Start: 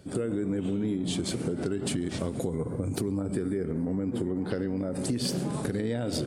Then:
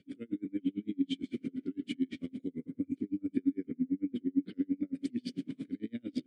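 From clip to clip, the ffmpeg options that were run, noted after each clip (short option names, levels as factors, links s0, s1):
-filter_complex "[0:a]asplit=3[s0][s1][s2];[s0]bandpass=f=270:t=q:w=8,volume=1[s3];[s1]bandpass=f=2290:t=q:w=8,volume=0.501[s4];[s2]bandpass=f=3010:t=q:w=8,volume=0.355[s5];[s3][s4][s5]amix=inputs=3:normalize=0,aeval=exprs='val(0)*pow(10,-36*(0.5-0.5*cos(2*PI*8.9*n/s))/20)':c=same,volume=2.66"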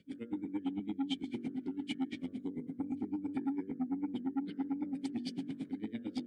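-filter_complex "[0:a]bandreject=f=47.91:t=h:w=4,bandreject=f=95.82:t=h:w=4,bandreject=f=143.73:t=h:w=4,bandreject=f=191.64:t=h:w=4,bandreject=f=239.55:t=h:w=4,bandreject=f=287.46:t=h:w=4,bandreject=f=335.37:t=h:w=4,bandreject=f=383.28:t=h:w=4,bandreject=f=431.19:t=h:w=4,bandreject=f=479.1:t=h:w=4,bandreject=f=527.01:t=h:w=4,bandreject=f=574.92:t=h:w=4,bandreject=f=622.83:t=h:w=4,bandreject=f=670.74:t=h:w=4,bandreject=f=718.65:t=h:w=4,bandreject=f=766.56:t=h:w=4,bandreject=f=814.47:t=h:w=4,bandreject=f=862.38:t=h:w=4,bandreject=f=910.29:t=h:w=4,bandreject=f=958.2:t=h:w=4,bandreject=f=1006.11:t=h:w=4,bandreject=f=1054.02:t=h:w=4,bandreject=f=1101.93:t=h:w=4,bandreject=f=1149.84:t=h:w=4,bandreject=f=1197.75:t=h:w=4,bandreject=f=1245.66:t=h:w=4,bandreject=f=1293.57:t=h:w=4,bandreject=f=1341.48:t=h:w=4,bandreject=f=1389.39:t=h:w=4,bandreject=f=1437.3:t=h:w=4,bandreject=f=1485.21:t=h:w=4,bandreject=f=1533.12:t=h:w=4,bandreject=f=1581.03:t=h:w=4,bandreject=f=1628.94:t=h:w=4,bandreject=f=1676.85:t=h:w=4,bandreject=f=1724.76:t=h:w=4,bandreject=f=1772.67:t=h:w=4,bandreject=f=1820.58:t=h:w=4,acrossover=split=820[s0][s1];[s0]asoftclip=type=tanh:threshold=0.0299[s2];[s2][s1]amix=inputs=2:normalize=0,volume=1.12"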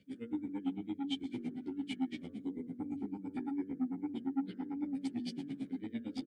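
-filter_complex "[0:a]asplit=2[s0][s1];[s1]adelay=11.9,afreqshift=-1.6[s2];[s0][s2]amix=inputs=2:normalize=1,volume=1.26"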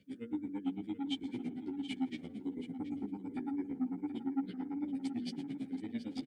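-af "aecho=1:1:727:0.237"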